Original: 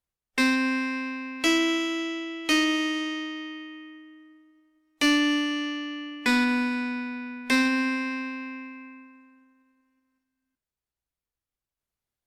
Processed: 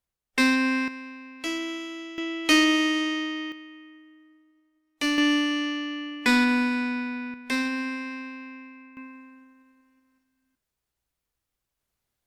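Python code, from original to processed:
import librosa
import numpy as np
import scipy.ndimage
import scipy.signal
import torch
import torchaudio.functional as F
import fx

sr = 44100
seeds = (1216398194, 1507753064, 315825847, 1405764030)

y = fx.gain(x, sr, db=fx.steps((0.0, 1.5), (0.88, -8.0), (2.18, 3.5), (3.52, -4.0), (5.18, 2.0), (7.34, -4.5), (8.97, 7.0)))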